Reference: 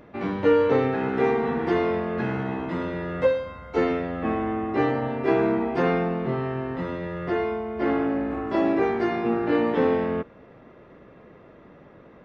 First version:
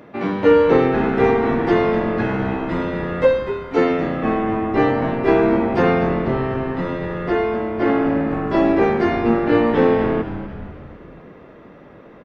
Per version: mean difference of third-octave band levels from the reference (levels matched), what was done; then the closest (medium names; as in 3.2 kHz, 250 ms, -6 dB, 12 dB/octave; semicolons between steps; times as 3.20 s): 1.5 dB: high-pass 120 Hz; on a send: frequency-shifting echo 246 ms, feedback 56%, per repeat -120 Hz, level -11 dB; on the sum: trim +6 dB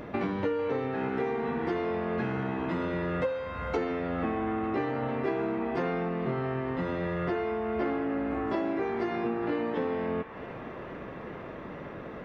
4.0 dB: compression 8:1, threshold -36 dBFS, peak gain reduction 20.5 dB; on a send: feedback echo behind a band-pass 450 ms, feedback 85%, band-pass 1.6 kHz, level -12 dB; on the sum: trim +8 dB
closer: first